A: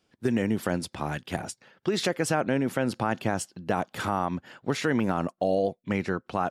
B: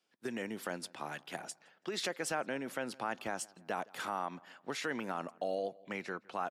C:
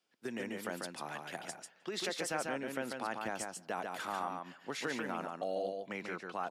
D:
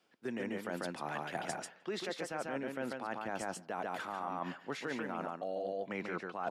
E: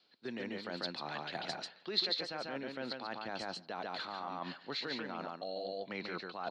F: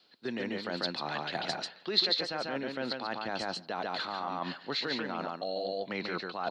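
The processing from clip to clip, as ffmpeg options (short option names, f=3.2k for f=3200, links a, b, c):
-filter_complex "[0:a]lowshelf=f=420:g=-11,asplit=2[a][b];[b]adelay=165,lowpass=f=2.6k:p=1,volume=-23.5dB,asplit=2[c][d];[d]adelay=165,lowpass=f=2.6k:p=1,volume=0.51,asplit=2[e][f];[f]adelay=165,lowpass=f=2.6k:p=1,volume=0.51[g];[a][c][e][g]amix=inputs=4:normalize=0,acrossover=split=130|1400|2000[h][i][j][k];[h]acrusher=bits=4:dc=4:mix=0:aa=0.000001[l];[l][i][j][k]amix=inputs=4:normalize=0,volume=-6.5dB"
-af "aecho=1:1:143:0.631,volume=-1.5dB"
-af "highshelf=f=3.5k:g=-10.5,areverse,acompressor=threshold=-46dB:ratio=12,areverse,volume=11.5dB"
-af "lowpass=f=4.2k:t=q:w=15,volume=-3dB"
-af "bandreject=f=2.3k:w=30,volume=6dB"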